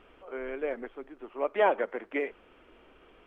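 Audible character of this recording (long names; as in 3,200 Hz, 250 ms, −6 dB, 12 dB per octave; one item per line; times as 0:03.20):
background noise floor −59 dBFS
spectral slope −1.5 dB per octave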